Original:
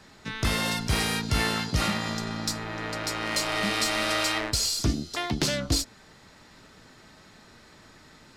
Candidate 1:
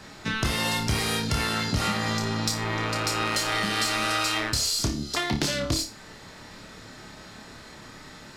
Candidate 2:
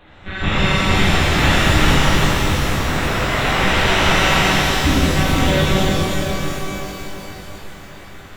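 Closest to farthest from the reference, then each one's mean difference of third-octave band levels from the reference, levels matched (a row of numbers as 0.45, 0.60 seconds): 1, 2; 4.0, 8.0 decibels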